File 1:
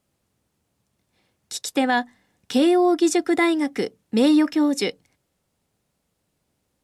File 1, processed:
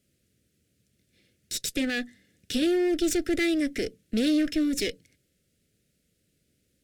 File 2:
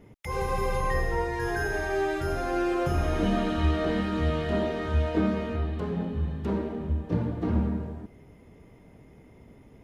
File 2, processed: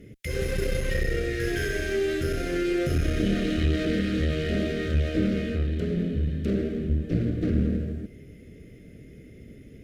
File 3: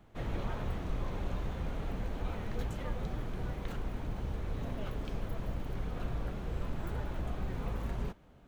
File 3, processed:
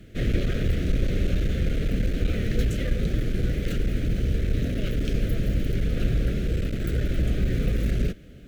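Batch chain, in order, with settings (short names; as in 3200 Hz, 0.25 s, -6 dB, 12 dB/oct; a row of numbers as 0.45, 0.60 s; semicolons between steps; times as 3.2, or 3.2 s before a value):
in parallel at +3 dB: limiter -19 dBFS; on the sum: one-sided clip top -26.5 dBFS, bottom -9 dBFS; Butterworth band-stop 930 Hz, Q 0.78; match loudness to -27 LUFS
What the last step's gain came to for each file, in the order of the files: -5.5, -1.5, +6.5 dB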